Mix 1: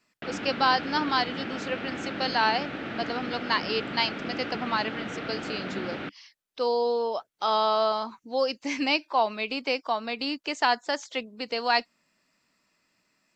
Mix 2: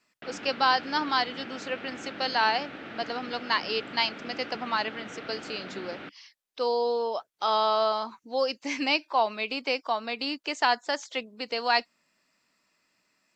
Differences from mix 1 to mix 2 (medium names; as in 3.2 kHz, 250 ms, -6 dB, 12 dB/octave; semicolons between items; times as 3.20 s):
background -5.0 dB; master: add bass shelf 240 Hz -6 dB